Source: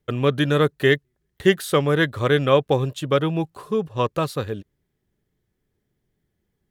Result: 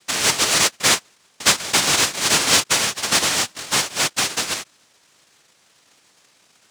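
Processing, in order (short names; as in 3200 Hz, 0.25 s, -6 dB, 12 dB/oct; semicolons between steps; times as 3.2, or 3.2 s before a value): noise vocoder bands 1; power-law curve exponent 0.7; gain -4.5 dB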